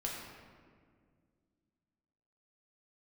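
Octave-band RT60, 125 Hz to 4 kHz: 2.8, 2.9, 2.2, 1.7, 1.5, 1.1 seconds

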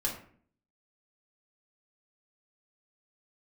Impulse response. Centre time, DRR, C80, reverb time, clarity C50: 25 ms, −3.0 dB, 11.0 dB, 0.50 s, 7.0 dB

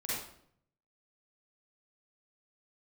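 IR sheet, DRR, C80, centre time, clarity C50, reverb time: −9.5 dB, 2.0 dB, 75 ms, −4.0 dB, 0.65 s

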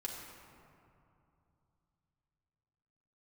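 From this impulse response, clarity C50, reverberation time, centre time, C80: 2.0 dB, 2.7 s, 88 ms, 3.0 dB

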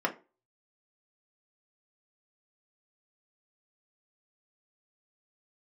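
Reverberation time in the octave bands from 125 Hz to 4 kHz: 0.30, 0.35, 0.35, 0.30, 0.25, 0.20 seconds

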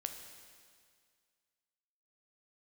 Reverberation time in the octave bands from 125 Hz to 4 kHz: 2.0, 2.0, 2.0, 2.0, 2.0, 2.0 seconds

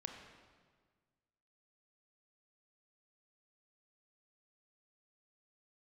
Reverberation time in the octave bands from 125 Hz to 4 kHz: 2.0, 1.8, 1.6, 1.5, 1.4, 1.3 seconds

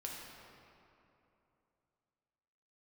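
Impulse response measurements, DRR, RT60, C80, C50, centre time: −2.5 dB, 2.9 s, 1.5 dB, 0.0 dB, 121 ms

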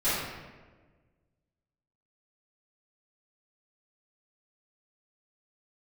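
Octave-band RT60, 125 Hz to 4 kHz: 1.9, 1.7, 1.6, 1.2, 1.1, 0.85 seconds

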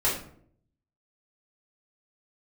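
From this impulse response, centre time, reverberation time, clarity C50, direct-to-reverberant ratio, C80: 35 ms, 0.60 s, 5.0 dB, −8.0 dB, 10.0 dB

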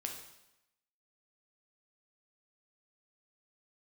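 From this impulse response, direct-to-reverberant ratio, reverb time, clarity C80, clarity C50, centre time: 1.5 dB, 0.90 s, 8.5 dB, 5.5 dB, 30 ms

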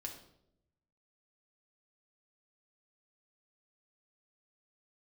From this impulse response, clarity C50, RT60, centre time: 7.5 dB, 0.80 s, 21 ms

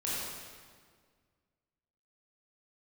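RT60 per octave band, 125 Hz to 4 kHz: 2.2, 2.1, 1.9, 1.7, 1.5, 1.4 seconds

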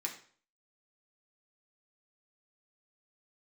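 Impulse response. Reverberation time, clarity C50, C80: 0.50 s, 9.5 dB, 13.0 dB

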